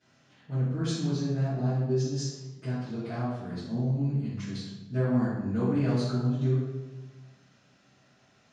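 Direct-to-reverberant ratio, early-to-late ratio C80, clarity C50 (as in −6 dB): −17.0 dB, 2.5 dB, −1.0 dB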